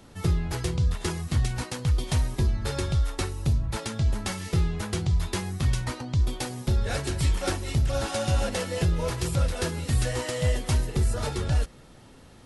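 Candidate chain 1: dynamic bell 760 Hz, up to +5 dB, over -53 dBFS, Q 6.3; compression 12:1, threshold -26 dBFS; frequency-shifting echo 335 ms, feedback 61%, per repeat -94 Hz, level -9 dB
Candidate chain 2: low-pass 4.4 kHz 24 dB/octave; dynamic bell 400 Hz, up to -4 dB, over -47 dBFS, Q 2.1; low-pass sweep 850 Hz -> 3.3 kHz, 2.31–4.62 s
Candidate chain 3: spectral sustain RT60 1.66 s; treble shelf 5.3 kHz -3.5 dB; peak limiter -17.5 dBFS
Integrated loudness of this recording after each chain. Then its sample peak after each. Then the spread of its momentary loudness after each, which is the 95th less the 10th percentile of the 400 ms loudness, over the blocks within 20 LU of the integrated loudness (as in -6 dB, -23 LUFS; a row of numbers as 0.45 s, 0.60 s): -31.5 LUFS, -27.5 LUFS, -27.0 LUFS; -16.0 dBFS, -13.5 dBFS, -17.5 dBFS; 3 LU, 4 LU, 1 LU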